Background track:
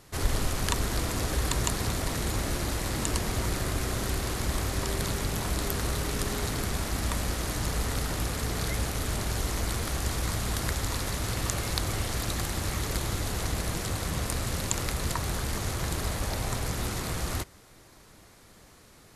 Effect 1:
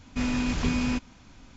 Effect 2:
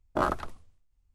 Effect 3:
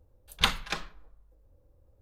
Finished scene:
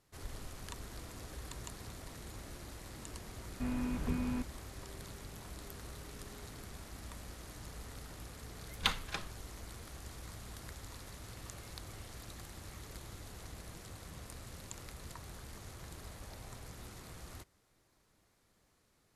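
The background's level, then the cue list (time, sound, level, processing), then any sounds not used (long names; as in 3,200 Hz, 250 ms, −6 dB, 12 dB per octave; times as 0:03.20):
background track −18.5 dB
0:03.44: mix in 1 −9 dB + Bessel low-pass filter 1,400 Hz
0:08.42: mix in 3 −7.5 dB
not used: 2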